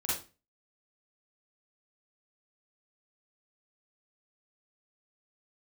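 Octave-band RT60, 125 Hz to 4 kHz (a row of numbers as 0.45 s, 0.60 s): 0.40 s, 0.40 s, 0.35 s, 0.30 s, 0.30 s, 0.30 s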